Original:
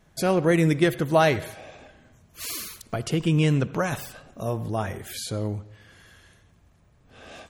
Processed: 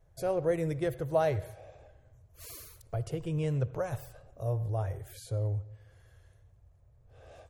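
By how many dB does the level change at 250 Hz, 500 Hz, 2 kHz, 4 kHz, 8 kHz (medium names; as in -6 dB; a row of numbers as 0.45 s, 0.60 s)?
-13.5 dB, -6.5 dB, -16.0 dB, -18.0 dB, -14.5 dB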